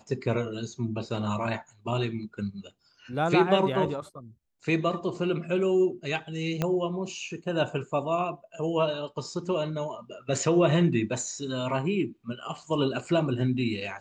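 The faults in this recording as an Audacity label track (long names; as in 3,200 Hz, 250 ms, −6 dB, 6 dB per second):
6.620000	6.620000	click −13 dBFS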